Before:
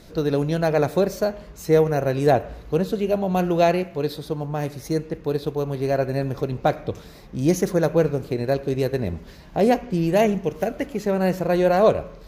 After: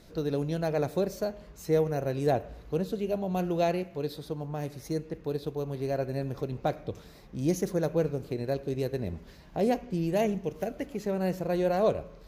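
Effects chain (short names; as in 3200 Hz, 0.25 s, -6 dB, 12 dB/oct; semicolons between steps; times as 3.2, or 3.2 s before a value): dynamic EQ 1400 Hz, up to -4 dB, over -34 dBFS, Q 0.74; gain -7.5 dB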